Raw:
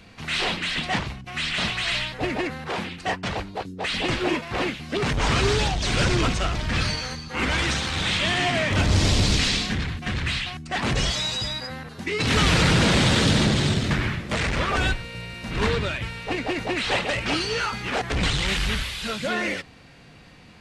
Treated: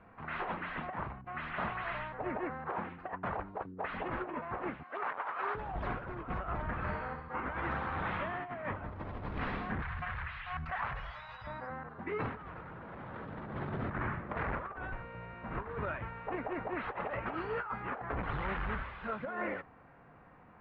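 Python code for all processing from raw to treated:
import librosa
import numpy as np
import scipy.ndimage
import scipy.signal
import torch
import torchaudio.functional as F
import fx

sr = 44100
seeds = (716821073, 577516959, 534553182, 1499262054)

y = fx.chain(x, sr, fx.highpass(hz=750.0, slope=12),
    fx.high_shelf(hz=8000.0, db=-8.5), at=(4.83, 5.55))
y = fx.chain(y, sr, fx.lowpass(hz=4500.0, slope=12),
    fx.room_flutter(wall_m=11.4, rt60_s=0.53), at=(6.62, 7.3))
y = fx.chain(y, sr, fx.tone_stack(knobs='10-0-10'),
    fx.env_flatten(amount_pct=100), at=(9.82, 11.47))
y = scipy.signal.sosfilt(scipy.signal.butter(4, 1200.0, 'lowpass', fs=sr, output='sos'), y)
y = fx.tilt_shelf(y, sr, db=-10.0, hz=850.0)
y = fx.over_compress(y, sr, threshold_db=-32.0, ratio=-0.5)
y = y * 10.0 ** (-4.5 / 20.0)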